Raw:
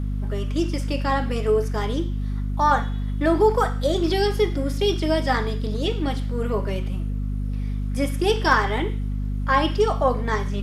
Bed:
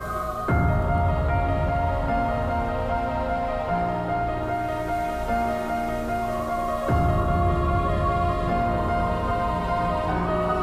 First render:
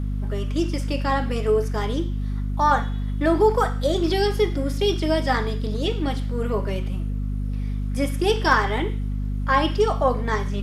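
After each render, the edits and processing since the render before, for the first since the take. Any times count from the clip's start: nothing audible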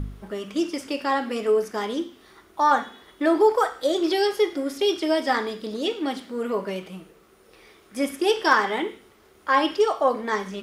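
de-hum 50 Hz, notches 5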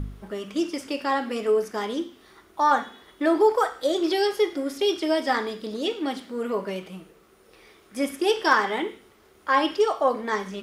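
gain -1 dB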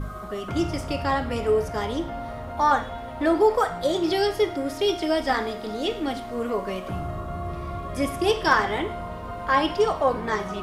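add bed -10 dB

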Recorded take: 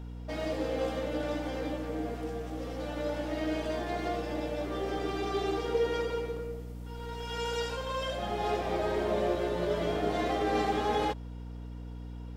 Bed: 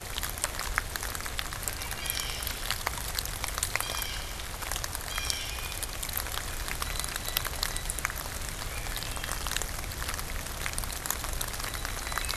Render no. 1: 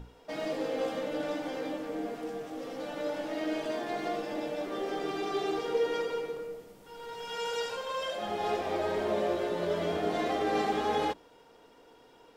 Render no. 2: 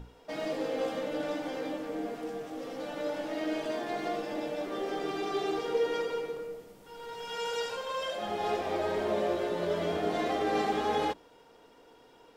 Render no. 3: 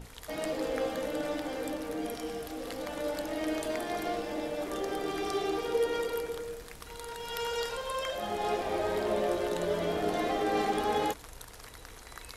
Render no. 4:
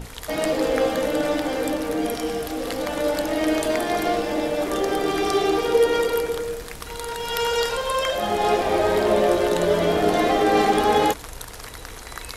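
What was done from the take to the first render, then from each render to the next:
notches 60/120/180/240/300/360 Hz
nothing audible
add bed -14.5 dB
gain +11 dB

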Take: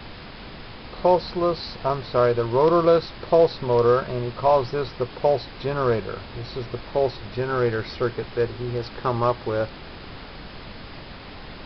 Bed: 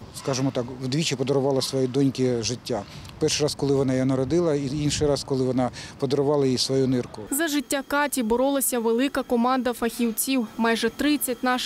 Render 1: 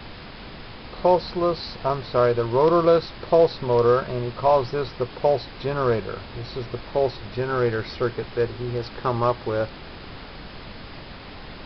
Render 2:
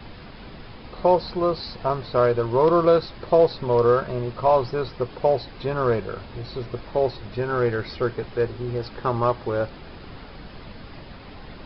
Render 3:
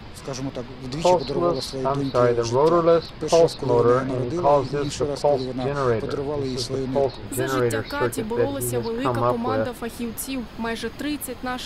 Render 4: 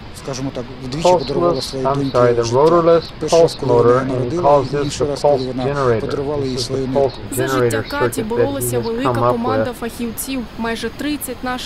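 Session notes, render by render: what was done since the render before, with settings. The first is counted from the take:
nothing audible
denoiser 6 dB, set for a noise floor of -40 dBFS
add bed -5.5 dB
gain +6 dB; limiter -2 dBFS, peak gain reduction 2 dB

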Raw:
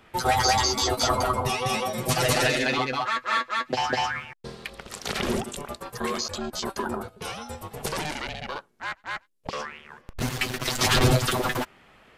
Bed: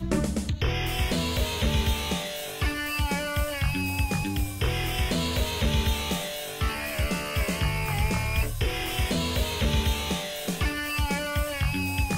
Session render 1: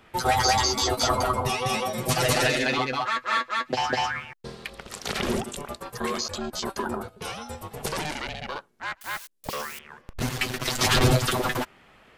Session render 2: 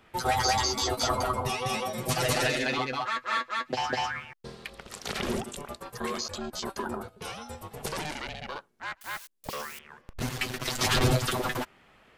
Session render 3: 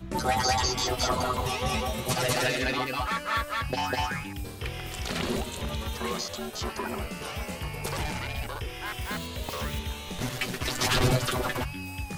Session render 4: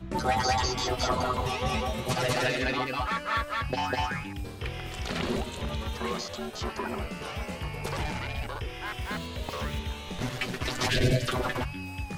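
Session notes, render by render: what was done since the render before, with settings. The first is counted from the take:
9.01–9.79 switching spikes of -30.5 dBFS
gain -4 dB
add bed -9 dB
10.9–11.28 spectral gain 730–1500 Hz -17 dB; high shelf 7300 Hz -11.5 dB

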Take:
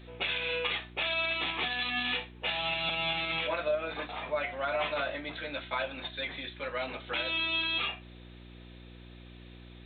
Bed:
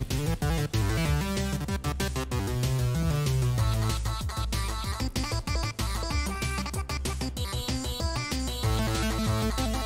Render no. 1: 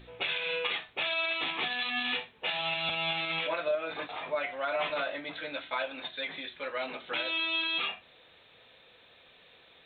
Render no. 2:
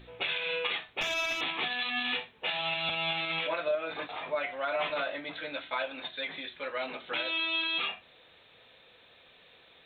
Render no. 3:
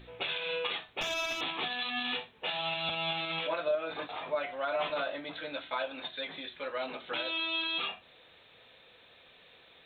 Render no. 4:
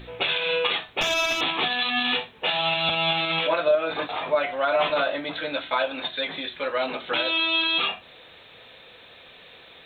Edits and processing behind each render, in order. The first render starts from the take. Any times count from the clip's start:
de-hum 60 Hz, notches 6
1.01–1.41 running maximum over 3 samples
dynamic EQ 2100 Hz, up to -6 dB, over -46 dBFS, Q 1.9
gain +10 dB

